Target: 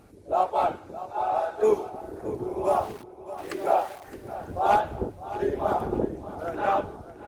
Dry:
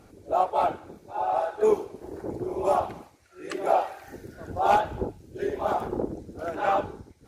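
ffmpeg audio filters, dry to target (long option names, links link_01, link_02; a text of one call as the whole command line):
ffmpeg -i in.wav -filter_complex "[0:a]asettb=1/sr,asplit=3[link_01][link_02][link_03];[link_01]atrim=end=2.694[link_04];[link_02]atrim=start=2.69:end=4.04,asetpts=PTS-STARTPTS,afade=type=in:duration=0.004:curve=qsin,afade=type=out:start_time=1.346:duration=0.004:curve=qsin,aeval=exprs='val(0)*gte(abs(val(0)),0.00944)':channel_layout=same[link_05];[link_03]atrim=start=4.036[link_06];[link_04][link_05]acrossfade=duration=0.004:curve1=hsin:curve2=qsin[link_07];[link_07][link_06]acrossfade=duration=0.004:curve1=qsin:curve2=hsin,asettb=1/sr,asplit=3[link_08][link_09][link_10];[link_08]atrim=end=5.404[link_11];[link_09]atrim=start=5.4:end=6.05,asetpts=PTS-STARTPTS,afade=type=in:duration=0.004:curve=qsin,afade=type=out:start_time=0.646:duration=0.004:curve=qsin,lowshelf=frequency=370:gain=5[link_12];[link_10]atrim=start=6.046[link_13];[link_11][link_12]acrossfade=duration=0.004:curve1=hsin:curve2=qsin[link_14];[link_14][link_13]acrossfade=duration=0.004:curve1=qsin:curve2=hsin,asplit=2[link_15][link_16];[link_16]aecho=0:1:615|1230|1845|2460:0.2|0.0918|0.0422|0.0194[link_17];[link_15][link_17]amix=inputs=2:normalize=0" -ar 48000 -c:a libopus -b:a 32k out.opus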